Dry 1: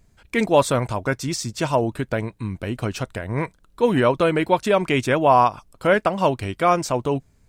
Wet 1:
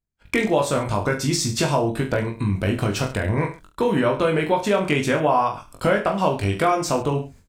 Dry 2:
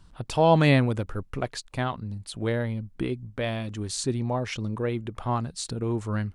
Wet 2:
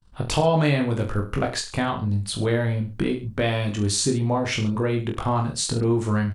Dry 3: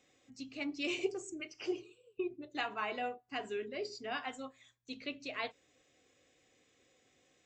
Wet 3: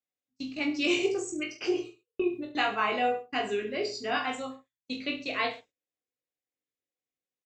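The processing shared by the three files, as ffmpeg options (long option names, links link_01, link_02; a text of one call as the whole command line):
ffmpeg -i in.wav -filter_complex "[0:a]agate=range=-38dB:threshold=-49dB:ratio=16:detection=peak,acompressor=threshold=-28dB:ratio=4,asplit=2[link_01][link_02];[link_02]aecho=0:1:20|43|69.45|99.87|134.8:0.631|0.398|0.251|0.158|0.1[link_03];[link_01][link_03]amix=inputs=2:normalize=0,volume=7.5dB" out.wav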